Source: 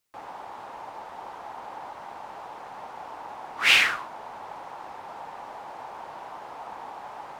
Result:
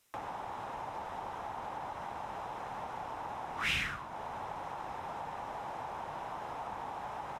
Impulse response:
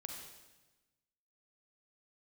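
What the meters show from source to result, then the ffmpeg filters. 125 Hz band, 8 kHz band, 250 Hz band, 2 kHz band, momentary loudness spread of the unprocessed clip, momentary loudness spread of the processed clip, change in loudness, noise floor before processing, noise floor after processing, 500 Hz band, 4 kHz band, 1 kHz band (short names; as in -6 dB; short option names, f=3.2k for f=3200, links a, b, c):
n/a, -13.0 dB, +0.5 dB, -13.0 dB, 19 LU, 7 LU, -16.0 dB, -43 dBFS, -44 dBFS, -2.0 dB, -14.5 dB, -2.5 dB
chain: -filter_complex "[0:a]bandreject=f=4.5k:w=9,acrossover=split=170[a][b];[b]acompressor=threshold=-53dB:ratio=2.5[c];[a][c]amix=inputs=2:normalize=0,aresample=32000,aresample=44100,volume=9dB"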